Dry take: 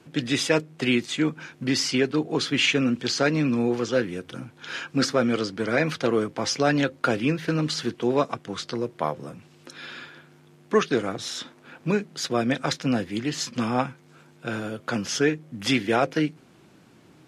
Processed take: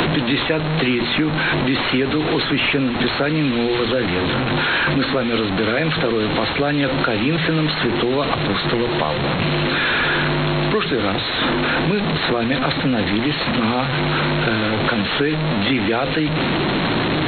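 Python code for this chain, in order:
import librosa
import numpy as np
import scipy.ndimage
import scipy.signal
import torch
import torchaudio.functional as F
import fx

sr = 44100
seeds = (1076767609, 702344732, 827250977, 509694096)

p1 = fx.delta_mod(x, sr, bps=32000, step_db=-24.0)
p2 = fx.brickwall_lowpass(p1, sr, high_hz=4300.0)
p3 = fx.over_compress(p2, sr, threshold_db=-27.0, ratio=-1.0)
p4 = p2 + (p3 * librosa.db_to_amplitude(2.5))
p5 = fx.hum_notches(p4, sr, base_hz=60, count=4)
y = fx.band_squash(p5, sr, depth_pct=100)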